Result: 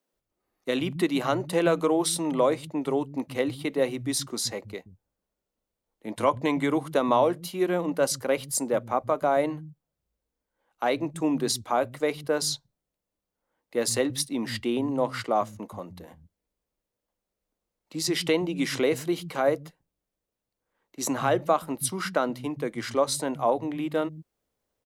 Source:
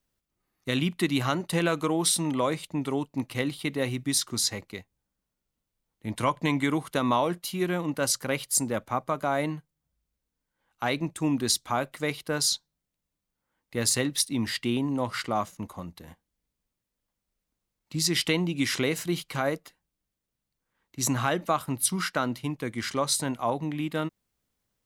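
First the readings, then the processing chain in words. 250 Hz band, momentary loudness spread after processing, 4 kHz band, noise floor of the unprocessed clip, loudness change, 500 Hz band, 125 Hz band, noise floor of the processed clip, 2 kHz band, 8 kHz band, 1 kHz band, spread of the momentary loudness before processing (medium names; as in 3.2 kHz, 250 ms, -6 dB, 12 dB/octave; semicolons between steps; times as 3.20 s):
+0.5 dB, 8 LU, -3.0 dB, -85 dBFS, +1.0 dB, +5.5 dB, -4.5 dB, under -85 dBFS, -2.0 dB, -3.5 dB, +2.0 dB, 8 LU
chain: peaking EQ 520 Hz +10 dB 1.8 oct; bands offset in time highs, lows 130 ms, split 170 Hz; trim -3.5 dB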